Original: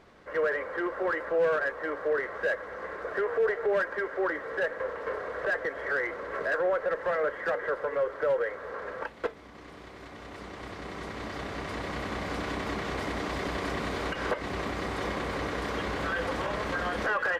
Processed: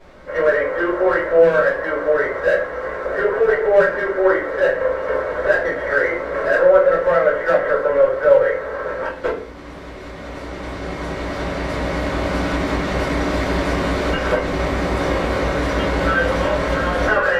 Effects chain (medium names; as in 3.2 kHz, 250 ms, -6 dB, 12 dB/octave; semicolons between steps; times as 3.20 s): simulated room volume 37 m³, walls mixed, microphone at 2.4 m; trim -1.5 dB